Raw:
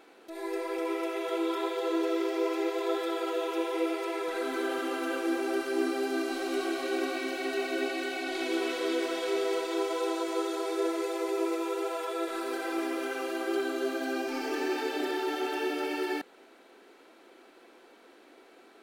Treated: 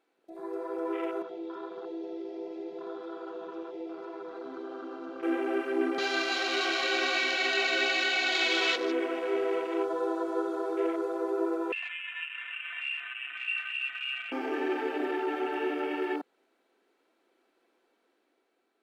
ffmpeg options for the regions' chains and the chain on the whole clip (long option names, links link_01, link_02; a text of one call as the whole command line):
ffmpeg -i in.wav -filter_complex "[0:a]asettb=1/sr,asplit=3[link_01][link_02][link_03];[link_01]atrim=end=1.224[link_04];[link_02]atrim=start=1.22:end=5.23,asetpts=PTS-STARTPTS,afade=type=in:duration=0.004:curve=qsin,afade=type=out:start_time=4.006:duration=0.004:curve=qsin,lowpass=frequency=5300:width=0.5412,lowpass=frequency=5300:width=1.3066,acrossover=split=120|3000[link_05][link_06][link_07];[link_06]acompressor=threshold=-42dB:ratio=2:attack=3.2:release=140:knee=2.83:detection=peak[link_08];[link_05][link_08][link_07]amix=inputs=3:normalize=0,equalizer=frequency=560:width=3.9:gain=-3.5[link_09];[link_03]atrim=start=5.226[link_10];[link_04][link_09]acrossfade=duration=0.004:curve1=hsin:curve2=qsin[link_11];[link_11][link_10]acrossfade=duration=0.004:curve1=qsin:curve2=hsin,asettb=1/sr,asplit=3[link_12][link_13][link_14];[link_12]atrim=end=5.984[link_15];[link_13]atrim=start=5.98:end=8.76,asetpts=PTS-STARTPTS,afade=type=in:duration=0.004:curve=qsin,afade=type=out:start_time=2.776:duration=0.004:curve=qsin,highpass=450,equalizer=frequency=3400:width=0.4:gain=11.5[link_16];[link_14]atrim=start=8.756[link_17];[link_15][link_16]acrossfade=duration=0.004:curve1=hsin:curve2=qsin[link_18];[link_18][link_17]acrossfade=duration=0.004:curve1=qsin:curve2=hsin,asettb=1/sr,asplit=3[link_19][link_20][link_21];[link_19]atrim=end=11.724[link_22];[link_20]atrim=start=11.72:end=14.32,asetpts=PTS-STARTPTS,afade=type=in:duration=0.004:curve=qsin,afade=type=out:start_time=2.596:duration=0.004:curve=qsin,acrossover=split=720[link_23][link_24];[link_23]aeval=exprs='val(0)*(1-0.7/2+0.7/2*cos(2*PI*3.4*n/s))':channel_layout=same[link_25];[link_24]aeval=exprs='val(0)*(1-0.7/2-0.7/2*cos(2*PI*3.4*n/s))':channel_layout=same[link_26];[link_25][link_26]amix=inputs=2:normalize=0,lowpass=frequency=2600:width_type=q:width=0.5098,lowpass=frequency=2600:width_type=q:width=0.6013,lowpass=frequency=2600:width_type=q:width=0.9,lowpass=frequency=2600:width_type=q:width=2.563,afreqshift=-3100[link_27];[link_21]atrim=start=14.316[link_28];[link_22][link_27]acrossfade=duration=0.004:curve1=hsin:curve2=qsin[link_29];[link_29][link_28]acrossfade=duration=0.004:curve1=qsin:curve2=hsin,afwtdn=0.0126,dynaudnorm=framelen=140:gausssize=11:maxgain=3.5dB,volume=-3dB" out.wav